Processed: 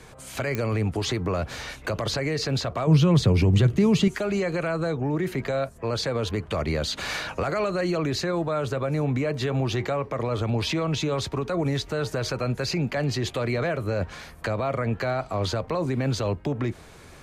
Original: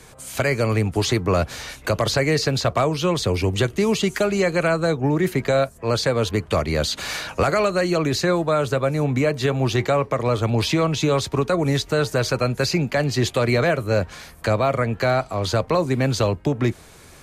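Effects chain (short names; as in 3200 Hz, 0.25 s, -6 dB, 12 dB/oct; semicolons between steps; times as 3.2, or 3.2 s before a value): high shelf 5600 Hz -9.5 dB; limiter -18 dBFS, peak gain reduction 9.5 dB; 2.87–4.08 bell 140 Hz +13 dB 1.5 oct; pops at 0.55, -13 dBFS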